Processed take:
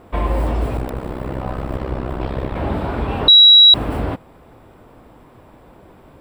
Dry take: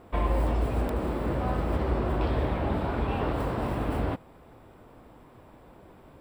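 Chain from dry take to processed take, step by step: 0.77–2.56 AM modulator 65 Hz, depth 80%; 3.28–3.74 bleep 3880 Hz -10.5 dBFS; gain +6.5 dB

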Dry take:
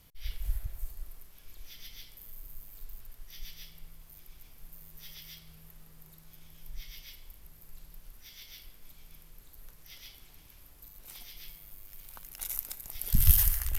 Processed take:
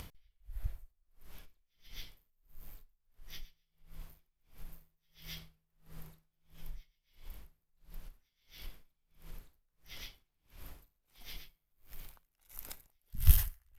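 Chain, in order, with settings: high shelf 4400 Hz -9.5 dB; upward compressor, threshold -36 dBFS; dB-linear tremolo 1.5 Hz, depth 37 dB; gain +1 dB

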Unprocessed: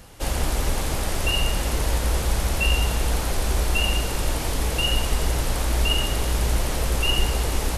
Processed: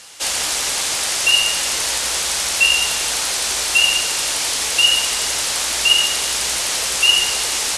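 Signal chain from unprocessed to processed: weighting filter ITU-R 468; gain +3 dB

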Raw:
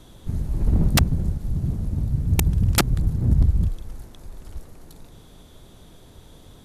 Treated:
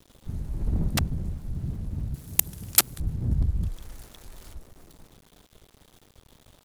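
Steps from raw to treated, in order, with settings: 0.88–1.6 notches 50/100/150 Hz; sample gate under -43 dBFS; 2.14–3 RIAA curve recording; 3.63–4.53 mismatched tape noise reduction encoder only; gain -7 dB

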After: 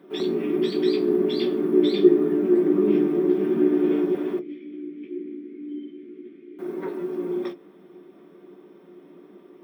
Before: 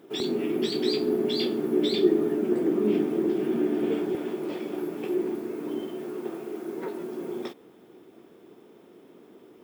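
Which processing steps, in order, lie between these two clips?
4.39–6.59 vowel filter i; reverb RT60 0.15 s, pre-delay 3 ms, DRR 3.5 dB; gain -7.5 dB

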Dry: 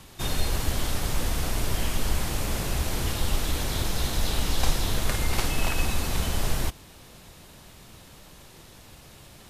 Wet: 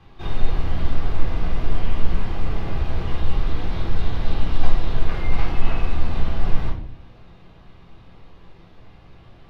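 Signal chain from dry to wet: air absorption 310 m; shoebox room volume 540 m³, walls furnished, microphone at 3.8 m; gain -5 dB

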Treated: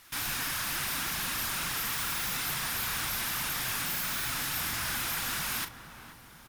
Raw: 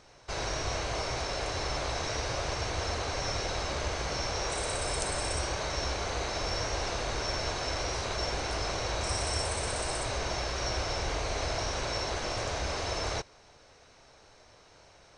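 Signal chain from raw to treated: CVSD 64 kbps; low shelf 500 Hz -10 dB; in parallel at +2.5 dB: wrapped overs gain 28.5 dB; on the sum: flange 1.5 Hz, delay 2 ms, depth 8.3 ms, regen +48%; speed mistake 33 rpm record played at 78 rpm; doubler 39 ms -10 dB; on a send: darkening echo 0.476 s, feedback 63%, low-pass 1200 Hz, level -10 dB

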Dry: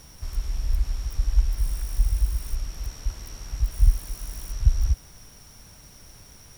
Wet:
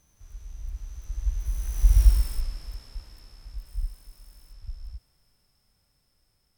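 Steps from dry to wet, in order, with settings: Doppler pass-by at 2.05, 27 m/s, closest 4.7 m; harmonic-percussive split harmonic +7 dB

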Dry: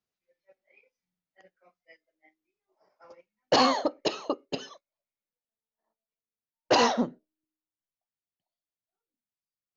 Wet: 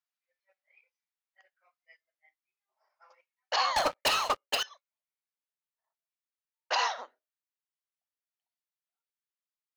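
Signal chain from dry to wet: Bessel high-pass 1200 Hz, order 4; high shelf 3000 Hz -8.5 dB; 3.76–4.63 sample leveller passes 5; gain +1.5 dB

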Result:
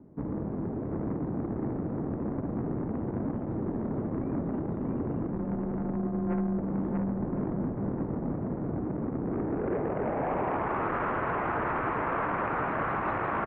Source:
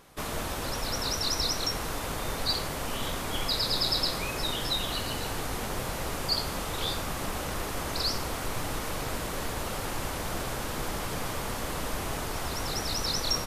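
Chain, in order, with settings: 5.32–6.58 sample sorter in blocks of 256 samples; on a send: echo 0.635 s -3.5 dB; on the sum: low-pass sweep 400 Hz -> 1500 Hz, 9.2–10.95; soft clip -30 dBFS, distortion -11 dB; outdoor echo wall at 180 m, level -8 dB; mistuned SSB -150 Hz 230–2500 Hz; gain +5.5 dB

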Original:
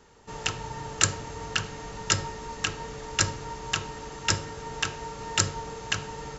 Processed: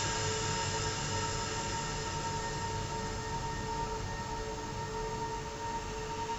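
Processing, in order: stepped spectrum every 0.2 s; added noise pink -66 dBFS; Paulstretch 20×, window 0.50 s, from 2.15

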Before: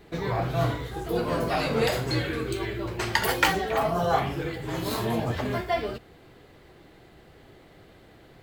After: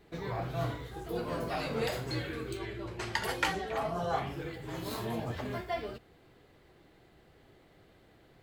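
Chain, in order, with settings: 2.57–4.27 LPF 11000 Hz 12 dB/oct; gain -8.5 dB

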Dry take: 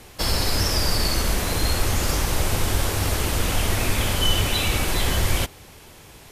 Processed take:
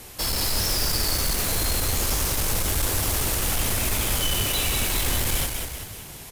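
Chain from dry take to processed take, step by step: high shelf 7000 Hz +11.5 dB; soft clip -22 dBFS, distortion -9 dB; on a send: frequency-shifting echo 0.19 s, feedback 50%, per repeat -41 Hz, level -5 dB

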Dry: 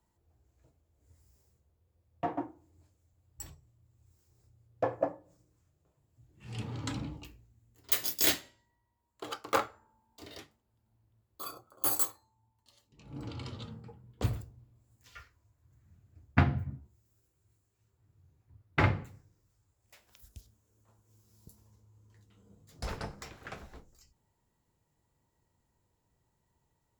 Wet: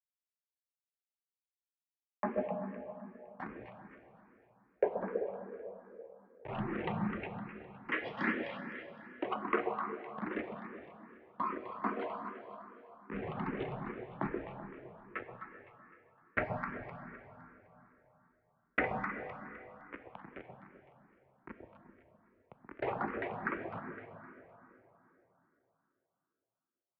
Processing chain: level-crossing sampler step -43.5 dBFS; reverb removal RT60 0.67 s; in parallel at +2 dB: limiter -19.5 dBFS, peak gain reduction 10.5 dB; on the sum: mistuned SSB -94 Hz 270–2400 Hz; compressor 2.5:1, threshold -43 dBFS, peak gain reduction 17 dB; echo with dull and thin repeats by turns 0.128 s, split 820 Hz, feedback 62%, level -4 dB; plate-style reverb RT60 3.5 s, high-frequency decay 0.6×, DRR 6 dB; endless phaser +2.5 Hz; gain +9.5 dB

